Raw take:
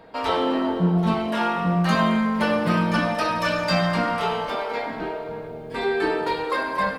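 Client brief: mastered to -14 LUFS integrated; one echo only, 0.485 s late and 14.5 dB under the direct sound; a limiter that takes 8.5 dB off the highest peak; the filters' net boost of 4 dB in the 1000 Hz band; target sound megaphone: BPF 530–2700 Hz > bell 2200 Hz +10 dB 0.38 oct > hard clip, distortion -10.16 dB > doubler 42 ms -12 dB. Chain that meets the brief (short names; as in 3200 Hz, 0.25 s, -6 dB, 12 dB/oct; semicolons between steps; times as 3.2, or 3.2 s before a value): bell 1000 Hz +5 dB; limiter -14.5 dBFS; BPF 530–2700 Hz; bell 2200 Hz +10 dB 0.38 oct; echo 0.485 s -14.5 dB; hard clip -24.5 dBFS; doubler 42 ms -12 dB; gain +13 dB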